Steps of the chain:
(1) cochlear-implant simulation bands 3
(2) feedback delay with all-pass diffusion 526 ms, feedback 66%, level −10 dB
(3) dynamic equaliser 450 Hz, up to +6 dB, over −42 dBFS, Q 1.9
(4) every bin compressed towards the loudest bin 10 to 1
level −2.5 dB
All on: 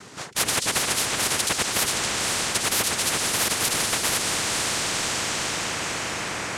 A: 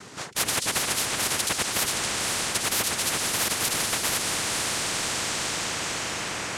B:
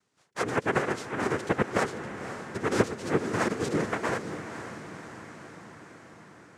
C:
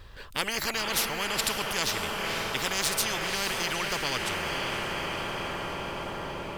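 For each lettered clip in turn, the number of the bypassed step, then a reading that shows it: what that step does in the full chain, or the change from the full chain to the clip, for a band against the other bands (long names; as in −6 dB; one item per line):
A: 3, change in momentary loudness spread −1 LU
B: 4, 8 kHz band −21.0 dB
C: 1, 8 kHz band −7.5 dB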